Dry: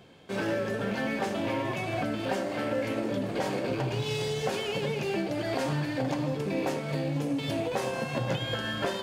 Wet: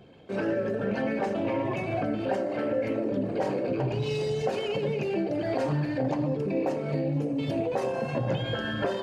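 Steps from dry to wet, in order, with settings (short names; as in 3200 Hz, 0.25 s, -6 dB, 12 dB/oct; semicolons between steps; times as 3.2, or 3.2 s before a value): formant sharpening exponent 1.5; notch 3400 Hz, Q 13; de-hum 56.97 Hz, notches 39; gain +2.5 dB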